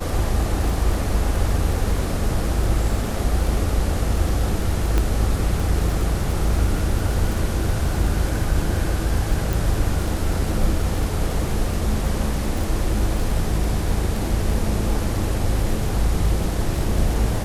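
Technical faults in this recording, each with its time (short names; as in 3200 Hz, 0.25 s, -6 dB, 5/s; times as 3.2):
crackle 18/s -24 dBFS
4.98 pop -8 dBFS
9.53 pop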